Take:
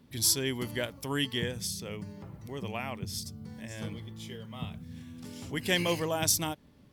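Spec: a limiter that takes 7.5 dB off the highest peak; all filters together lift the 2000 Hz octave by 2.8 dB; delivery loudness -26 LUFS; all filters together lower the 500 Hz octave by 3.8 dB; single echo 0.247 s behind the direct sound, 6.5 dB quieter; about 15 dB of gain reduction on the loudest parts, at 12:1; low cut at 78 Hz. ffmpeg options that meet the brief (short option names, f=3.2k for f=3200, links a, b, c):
-af "highpass=78,equalizer=f=500:t=o:g=-5,equalizer=f=2k:t=o:g=3.5,acompressor=threshold=-36dB:ratio=12,alimiter=level_in=7.5dB:limit=-24dB:level=0:latency=1,volume=-7.5dB,aecho=1:1:247:0.473,volume=16dB"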